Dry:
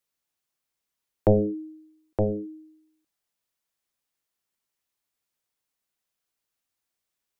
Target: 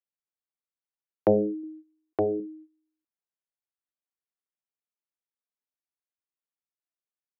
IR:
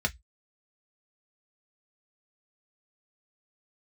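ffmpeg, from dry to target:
-filter_complex "[0:a]agate=range=0.2:threshold=0.00398:ratio=16:detection=peak,asettb=1/sr,asplit=3[s0][s1][s2];[s0]atrim=end=1.634[s3];[s1]atrim=start=1.63:end=2.4,asetpts=PTS-STARTPTS,afade=t=in:d=0.004:c=qsin,afade=t=out:st=0.766:d=0.004:c=qsin,aecho=1:1:2.7:0.68,atrim=end_sample=33957[s4];[s2]atrim=start=2.396[s5];[s3][s4]acrossfade=d=0.004:c1=hsin:c2=qsin[s6];[s6][s5]acrossfade=d=0.004:c1=qsin:c2=hsin,highpass=200,lowpass=2000"

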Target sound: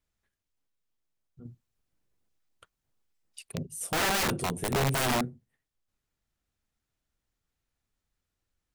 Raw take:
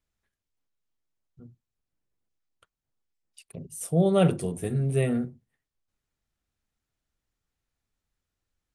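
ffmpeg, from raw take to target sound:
-filter_complex "[0:a]asettb=1/sr,asplit=3[s0][s1][s2];[s0]atrim=end=1.454[s3];[s1]atrim=start=1.45:end=3.63,asetpts=PTS-STARTPTS,afade=t=in:d=0.004:c=qsin,afade=t=out:st=2.176:d=0.004:c=qsin,acontrast=27[s4];[s2]atrim=start=3.626[s5];[s3][s4]acrossfade=d=0.004:c1=hsin:c2=qsin[s6];[s6][s5]acrossfade=d=0.004:c1=qsin:c2=hsin,aeval=exprs='(mod(12.6*val(0)+1,2)-1)/12.6':c=same"

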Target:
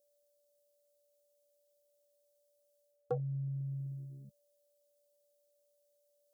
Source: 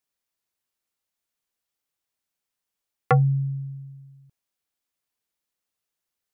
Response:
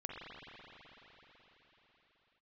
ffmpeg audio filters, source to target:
-af "alimiter=limit=0.106:level=0:latency=1,areverse,acompressor=threshold=0.0126:ratio=6,areverse,aeval=exprs='val(0)+0.000501*sin(2*PI*580*n/s)':c=same,aexciter=amount=5.4:drive=3.7:freq=2800,afwtdn=0.00447,equalizer=f=125:t=o:w=1:g=-5,equalizer=f=250:t=o:w=1:g=5,equalizer=f=500:t=o:w=1:g=10,equalizer=f=1000:t=o:w=1:g=-8,equalizer=f=2000:t=o:w=1:g=-12,volume=1.5"

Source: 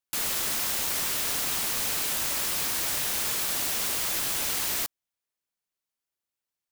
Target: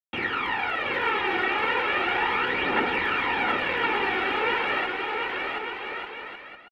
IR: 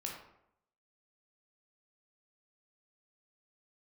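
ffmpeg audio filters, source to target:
-filter_complex "[0:a]aecho=1:1:2.1:0.72,acrusher=bits=5:mix=0:aa=0.000001,highpass=f=220:t=q:w=0.5412,highpass=f=220:t=q:w=1.307,lowpass=f=2700:t=q:w=0.5176,lowpass=f=2700:t=q:w=0.7071,lowpass=f=2700:t=q:w=1.932,afreqshift=-88,aphaser=in_gain=1:out_gain=1:delay=2.8:decay=0.67:speed=0.36:type=triangular,asplit=2[s0][s1];[s1]aecho=0:1:720|1188|1492|1690|1818:0.631|0.398|0.251|0.158|0.1[s2];[s0][s2]amix=inputs=2:normalize=0,volume=2"

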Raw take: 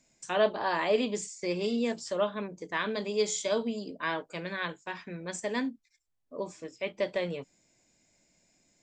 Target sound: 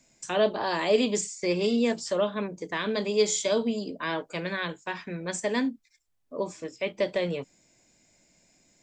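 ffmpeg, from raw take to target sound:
-filter_complex "[0:a]asettb=1/sr,asplit=3[s0][s1][s2];[s0]atrim=end=0.634[s3];[s1]atrim=start=0.63:end=1.21,asetpts=PTS-STARTPTS,afade=t=in:d=0.004:c=qsin,afade=t=out:st=0.576:d=0.004:c=qsin,highshelf=f=7000:g=9.5[s4];[s2]atrim=start=1.206[s5];[s3][s4]acrossfade=d=0.004:c1=hsin:c2=qsin[s6];[s6][s5]acrossfade=d=0.004:c1=qsin:c2=hsin,acrossover=split=580|2900[s7][s8][s9];[s8]alimiter=level_in=1.68:limit=0.0631:level=0:latency=1:release=180,volume=0.596[s10];[s7][s10][s9]amix=inputs=3:normalize=0,volume=1.78"

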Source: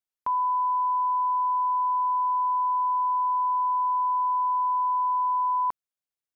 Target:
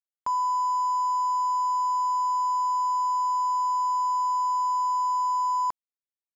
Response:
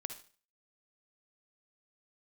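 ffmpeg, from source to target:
-af "aeval=exprs='0.0891*(cos(1*acos(clip(val(0)/0.0891,-1,1)))-cos(1*PI/2))+0.000562*(cos(4*acos(clip(val(0)/0.0891,-1,1)))-cos(4*PI/2))+0.000562*(cos(6*acos(clip(val(0)/0.0891,-1,1)))-cos(6*PI/2))+0.00447*(cos(7*acos(clip(val(0)/0.0891,-1,1)))-cos(7*PI/2))':c=same,aeval=exprs='sgn(val(0))*max(abs(val(0))-0.00299,0)':c=same"

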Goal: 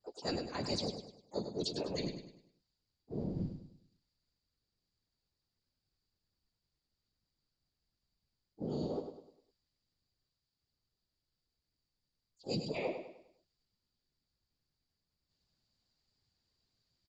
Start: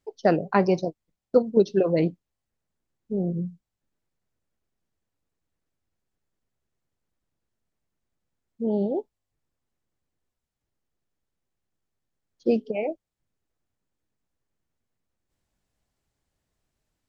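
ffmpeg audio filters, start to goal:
-filter_complex "[0:a]equalizer=f=79:w=0.74:g=4,bandreject=f=640:w=17,areverse,acompressor=threshold=0.0447:ratio=16,areverse,afftfilt=real='hypot(re,im)*cos(2*PI*random(0))':imag='hypot(re,im)*sin(2*PI*random(1))':win_size=512:overlap=0.75,lowpass=f=4700:t=q:w=13,asplit=3[s0][s1][s2];[s1]asetrate=37084,aresample=44100,atempo=1.18921,volume=0.282[s3];[s2]asetrate=66075,aresample=44100,atempo=0.66742,volume=0.224[s4];[s0][s3][s4]amix=inputs=3:normalize=0,asplit=2[s5][s6];[s6]aecho=0:1:101|202|303|404|505:0.398|0.159|0.0637|0.0255|0.0102[s7];[s5][s7]amix=inputs=2:normalize=0,adynamicequalizer=threshold=0.00126:dfrequency=1900:dqfactor=0.7:tfrequency=1900:tqfactor=0.7:attack=5:release=100:ratio=0.375:range=3.5:mode=boostabove:tftype=highshelf,volume=0.794"

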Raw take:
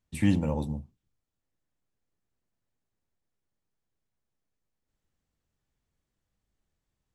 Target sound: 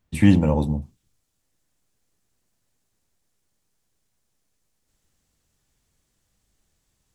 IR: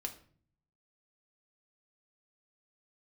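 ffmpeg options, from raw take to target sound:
-af "asetnsamples=n=441:p=0,asendcmd='0.82 equalizer g 9',equalizer=f=8400:w=0.46:g=-4.5,volume=2.82"

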